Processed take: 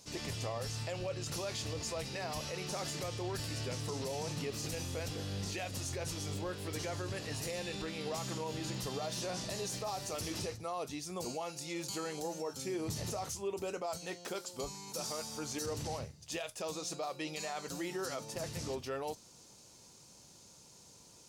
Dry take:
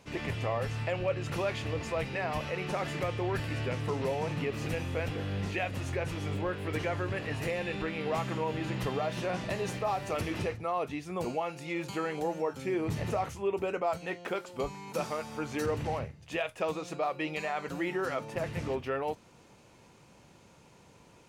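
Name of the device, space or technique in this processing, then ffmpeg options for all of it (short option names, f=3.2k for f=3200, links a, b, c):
over-bright horn tweeter: -af "highshelf=f=3.5k:t=q:w=1.5:g=13.5,alimiter=limit=-24dB:level=0:latency=1:release=31,volume=-5.5dB"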